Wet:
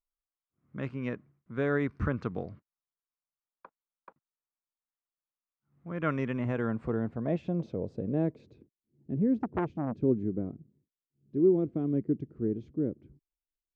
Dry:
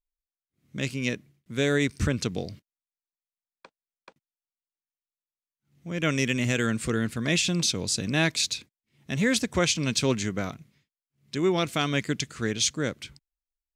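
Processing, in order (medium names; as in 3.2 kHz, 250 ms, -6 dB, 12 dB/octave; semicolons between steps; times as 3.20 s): low-pass sweep 1.2 kHz -> 350 Hz, 6.12–8.89 s; 9.42–10.02 s: transformer saturation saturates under 830 Hz; trim -5 dB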